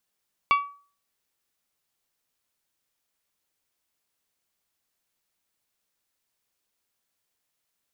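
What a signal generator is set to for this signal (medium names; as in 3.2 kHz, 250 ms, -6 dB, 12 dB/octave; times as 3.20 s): glass hit bell, lowest mode 1.14 kHz, decay 0.41 s, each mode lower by 6 dB, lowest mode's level -14.5 dB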